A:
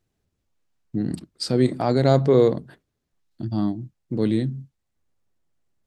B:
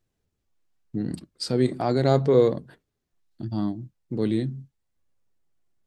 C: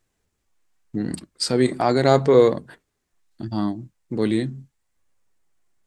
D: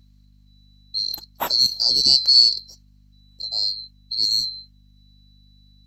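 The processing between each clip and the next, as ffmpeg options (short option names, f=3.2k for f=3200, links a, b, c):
-af "flanger=delay=1.7:depth=1.2:regen=79:speed=0.79:shape=triangular,volume=2dB"
-af "equalizer=f=125:t=o:w=1:g=-4,equalizer=f=1k:t=o:w=1:g=4,equalizer=f=2k:t=o:w=1:g=5,equalizer=f=8k:t=o:w=1:g=7,volume=3.5dB"
-af "afftfilt=real='real(if(lt(b,736),b+184*(1-2*mod(floor(b/184),2)),b),0)':imag='imag(if(lt(b,736),b+184*(1-2*mod(floor(b/184),2)),b),0)':win_size=2048:overlap=0.75,aeval=exprs='val(0)+0.00251*(sin(2*PI*50*n/s)+sin(2*PI*2*50*n/s)/2+sin(2*PI*3*50*n/s)/3+sin(2*PI*4*50*n/s)/4+sin(2*PI*5*50*n/s)/5)':c=same"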